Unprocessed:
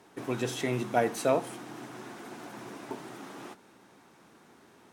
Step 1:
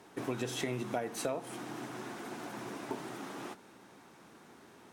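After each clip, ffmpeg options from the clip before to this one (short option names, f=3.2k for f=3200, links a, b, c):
-af "acompressor=threshold=-32dB:ratio=16,volume=1dB"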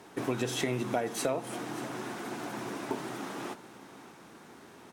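-af "aecho=1:1:586:0.15,volume=4.5dB"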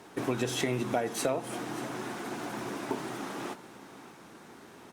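-af "volume=1dB" -ar 48000 -c:a libopus -b:a 64k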